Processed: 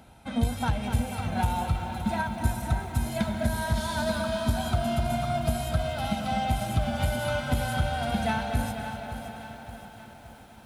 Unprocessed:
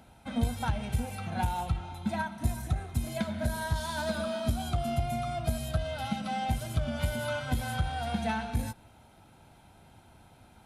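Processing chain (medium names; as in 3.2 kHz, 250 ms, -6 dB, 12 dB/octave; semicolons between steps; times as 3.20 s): on a send: tape echo 247 ms, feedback 76%, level -8 dB, low-pass 5.9 kHz; on the sum: bit-crushed delay 569 ms, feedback 55%, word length 9-bit, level -11 dB; trim +3 dB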